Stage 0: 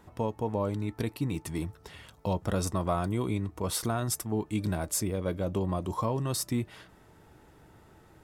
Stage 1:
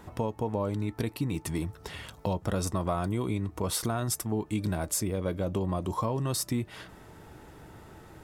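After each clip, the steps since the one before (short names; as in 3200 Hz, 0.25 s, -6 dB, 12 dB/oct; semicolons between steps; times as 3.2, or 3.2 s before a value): compressor 2:1, threshold -39 dBFS, peak gain reduction 8.5 dB; gain +7 dB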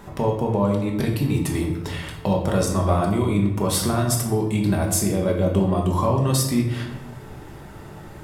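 shoebox room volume 340 m³, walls mixed, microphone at 1.2 m; gain +5.5 dB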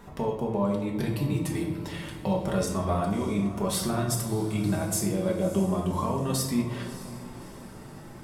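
flange 0.32 Hz, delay 4.2 ms, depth 2.3 ms, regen -40%; diffused feedback echo 0.612 s, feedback 49%, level -14.5 dB; gain -2.5 dB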